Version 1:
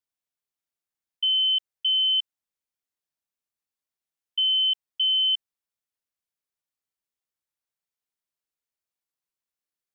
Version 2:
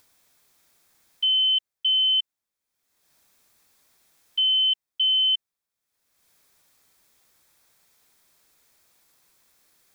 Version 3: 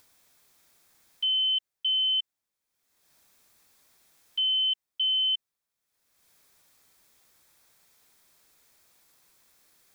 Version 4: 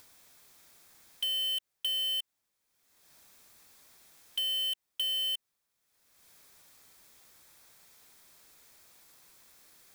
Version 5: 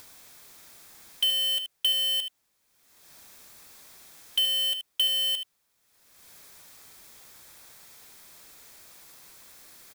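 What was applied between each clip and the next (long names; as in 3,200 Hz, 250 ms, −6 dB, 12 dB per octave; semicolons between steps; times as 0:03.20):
notch filter 2,900 Hz, Q 9.9; upward compression, threshold −48 dBFS; level +4 dB
brickwall limiter −22 dBFS, peak gain reduction 4.5 dB
in parallel at −4 dB: wrap-around overflow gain 27.5 dB; on the sum: downward compressor, threshold −30 dBFS, peak gain reduction 5.5 dB
single-tap delay 76 ms −10.5 dB; level +8 dB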